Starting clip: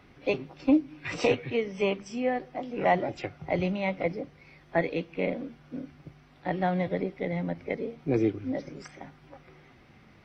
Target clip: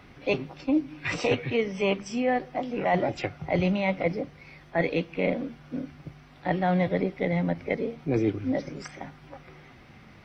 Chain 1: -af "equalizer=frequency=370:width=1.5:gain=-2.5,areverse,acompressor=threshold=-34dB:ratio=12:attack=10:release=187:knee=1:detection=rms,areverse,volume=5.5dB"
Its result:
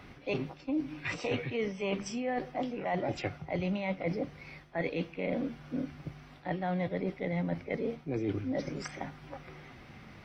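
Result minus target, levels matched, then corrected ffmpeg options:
downward compressor: peak gain reduction +8.5 dB
-af "equalizer=frequency=370:width=1.5:gain=-2.5,areverse,acompressor=threshold=-24.5dB:ratio=12:attack=10:release=187:knee=1:detection=rms,areverse,volume=5.5dB"

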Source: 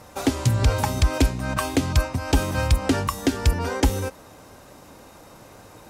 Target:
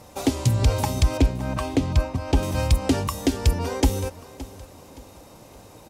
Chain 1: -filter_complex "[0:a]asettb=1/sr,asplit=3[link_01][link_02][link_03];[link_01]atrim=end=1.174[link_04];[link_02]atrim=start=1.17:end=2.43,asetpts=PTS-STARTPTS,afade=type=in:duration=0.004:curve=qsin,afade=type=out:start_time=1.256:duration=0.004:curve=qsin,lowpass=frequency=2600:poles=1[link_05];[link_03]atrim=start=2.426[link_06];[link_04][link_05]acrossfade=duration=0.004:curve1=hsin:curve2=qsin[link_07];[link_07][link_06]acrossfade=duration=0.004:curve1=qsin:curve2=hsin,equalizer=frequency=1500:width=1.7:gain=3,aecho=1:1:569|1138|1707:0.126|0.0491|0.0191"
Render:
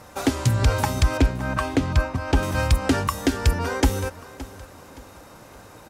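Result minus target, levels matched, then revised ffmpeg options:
2,000 Hz band +6.5 dB
-filter_complex "[0:a]asettb=1/sr,asplit=3[link_01][link_02][link_03];[link_01]atrim=end=1.174[link_04];[link_02]atrim=start=1.17:end=2.43,asetpts=PTS-STARTPTS,afade=type=in:duration=0.004:curve=qsin,afade=type=out:start_time=1.256:duration=0.004:curve=qsin,lowpass=frequency=2600:poles=1[link_05];[link_03]atrim=start=2.426[link_06];[link_04][link_05]acrossfade=duration=0.004:curve1=hsin:curve2=qsin[link_07];[link_07][link_06]acrossfade=duration=0.004:curve1=qsin:curve2=hsin,equalizer=frequency=1500:width=1.7:gain=-7.5,aecho=1:1:569|1138|1707:0.126|0.0491|0.0191"

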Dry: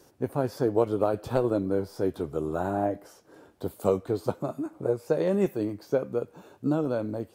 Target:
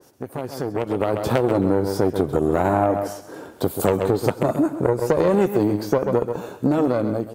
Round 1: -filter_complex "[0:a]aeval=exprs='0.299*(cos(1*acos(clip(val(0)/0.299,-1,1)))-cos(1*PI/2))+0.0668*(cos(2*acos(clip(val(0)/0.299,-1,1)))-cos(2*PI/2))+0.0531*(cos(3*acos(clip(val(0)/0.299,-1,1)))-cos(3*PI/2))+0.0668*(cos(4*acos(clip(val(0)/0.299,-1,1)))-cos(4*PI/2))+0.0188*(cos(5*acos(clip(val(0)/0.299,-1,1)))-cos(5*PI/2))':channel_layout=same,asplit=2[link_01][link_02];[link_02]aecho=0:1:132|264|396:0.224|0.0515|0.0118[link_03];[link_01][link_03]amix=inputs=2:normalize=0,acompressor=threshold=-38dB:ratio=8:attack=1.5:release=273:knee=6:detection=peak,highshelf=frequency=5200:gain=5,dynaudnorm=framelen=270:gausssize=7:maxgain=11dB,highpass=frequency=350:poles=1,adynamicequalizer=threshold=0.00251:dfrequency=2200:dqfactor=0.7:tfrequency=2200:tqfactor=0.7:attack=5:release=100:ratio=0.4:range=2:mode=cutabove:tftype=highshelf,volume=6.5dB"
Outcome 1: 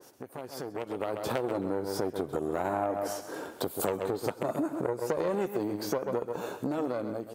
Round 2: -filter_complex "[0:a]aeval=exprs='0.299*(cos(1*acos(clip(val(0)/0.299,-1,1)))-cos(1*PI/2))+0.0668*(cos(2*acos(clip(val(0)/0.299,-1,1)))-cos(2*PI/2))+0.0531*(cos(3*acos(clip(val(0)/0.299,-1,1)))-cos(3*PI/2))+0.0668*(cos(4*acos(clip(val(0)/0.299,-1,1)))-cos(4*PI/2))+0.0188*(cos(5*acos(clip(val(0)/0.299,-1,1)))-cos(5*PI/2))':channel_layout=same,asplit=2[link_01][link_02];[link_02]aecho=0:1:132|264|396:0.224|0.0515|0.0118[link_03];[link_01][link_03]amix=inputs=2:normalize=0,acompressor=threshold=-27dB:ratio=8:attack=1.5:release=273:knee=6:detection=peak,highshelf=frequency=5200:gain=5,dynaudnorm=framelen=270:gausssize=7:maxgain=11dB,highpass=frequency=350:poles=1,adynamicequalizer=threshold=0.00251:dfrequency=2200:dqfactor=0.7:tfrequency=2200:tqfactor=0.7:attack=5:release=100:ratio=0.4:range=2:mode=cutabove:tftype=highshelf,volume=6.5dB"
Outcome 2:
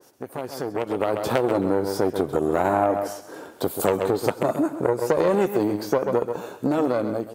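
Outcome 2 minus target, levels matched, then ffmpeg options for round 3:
125 Hz band −5.0 dB
-filter_complex "[0:a]aeval=exprs='0.299*(cos(1*acos(clip(val(0)/0.299,-1,1)))-cos(1*PI/2))+0.0668*(cos(2*acos(clip(val(0)/0.299,-1,1)))-cos(2*PI/2))+0.0531*(cos(3*acos(clip(val(0)/0.299,-1,1)))-cos(3*PI/2))+0.0668*(cos(4*acos(clip(val(0)/0.299,-1,1)))-cos(4*PI/2))+0.0188*(cos(5*acos(clip(val(0)/0.299,-1,1)))-cos(5*PI/2))':channel_layout=same,asplit=2[link_01][link_02];[link_02]aecho=0:1:132|264|396:0.224|0.0515|0.0118[link_03];[link_01][link_03]amix=inputs=2:normalize=0,acompressor=threshold=-27dB:ratio=8:attack=1.5:release=273:knee=6:detection=peak,highshelf=frequency=5200:gain=5,dynaudnorm=framelen=270:gausssize=7:maxgain=11dB,highpass=frequency=92:poles=1,adynamicequalizer=threshold=0.00251:dfrequency=2200:dqfactor=0.7:tfrequency=2200:tqfactor=0.7:attack=5:release=100:ratio=0.4:range=2:mode=cutabove:tftype=highshelf,volume=6.5dB"

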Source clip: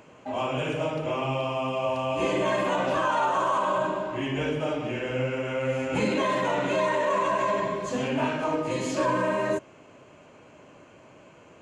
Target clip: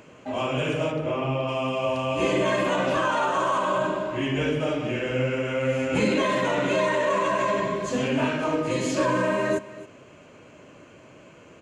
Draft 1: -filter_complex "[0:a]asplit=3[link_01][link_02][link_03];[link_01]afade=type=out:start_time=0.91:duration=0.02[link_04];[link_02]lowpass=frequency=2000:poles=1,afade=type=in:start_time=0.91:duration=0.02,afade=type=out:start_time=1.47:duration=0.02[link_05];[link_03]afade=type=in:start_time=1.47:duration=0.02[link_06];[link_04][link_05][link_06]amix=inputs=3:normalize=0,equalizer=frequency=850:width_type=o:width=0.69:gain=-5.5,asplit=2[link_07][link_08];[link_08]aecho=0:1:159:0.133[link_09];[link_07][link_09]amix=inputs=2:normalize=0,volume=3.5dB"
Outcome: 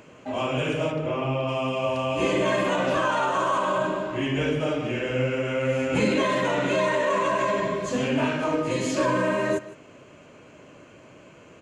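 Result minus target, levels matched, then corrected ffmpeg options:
echo 110 ms early
-filter_complex "[0:a]asplit=3[link_01][link_02][link_03];[link_01]afade=type=out:start_time=0.91:duration=0.02[link_04];[link_02]lowpass=frequency=2000:poles=1,afade=type=in:start_time=0.91:duration=0.02,afade=type=out:start_time=1.47:duration=0.02[link_05];[link_03]afade=type=in:start_time=1.47:duration=0.02[link_06];[link_04][link_05][link_06]amix=inputs=3:normalize=0,equalizer=frequency=850:width_type=o:width=0.69:gain=-5.5,asplit=2[link_07][link_08];[link_08]aecho=0:1:269:0.133[link_09];[link_07][link_09]amix=inputs=2:normalize=0,volume=3.5dB"

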